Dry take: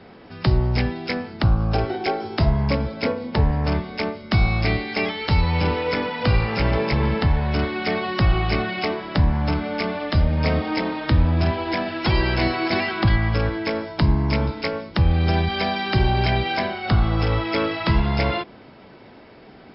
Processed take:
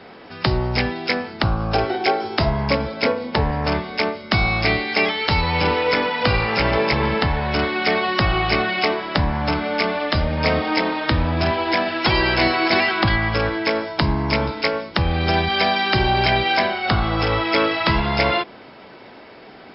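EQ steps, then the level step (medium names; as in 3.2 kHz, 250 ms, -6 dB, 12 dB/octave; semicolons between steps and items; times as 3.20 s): bass shelf 260 Hz -11.5 dB; +6.5 dB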